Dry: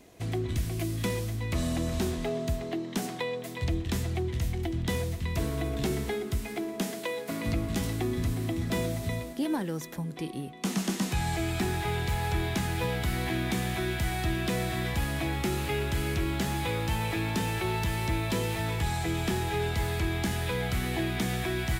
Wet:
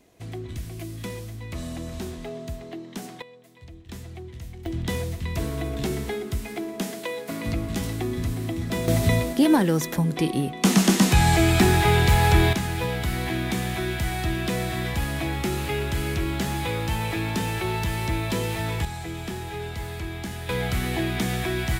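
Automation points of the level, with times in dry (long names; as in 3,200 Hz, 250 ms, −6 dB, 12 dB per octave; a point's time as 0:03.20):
−4 dB
from 0:03.22 −15.5 dB
from 0:03.89 −8.5 dB
from 0:04.66 +2 dB
from 0:08.88 +11.5 dB
from 0:12.53 +3 dB
from 0:18.85 −3.5 dB
from 0:20.49 +4 dB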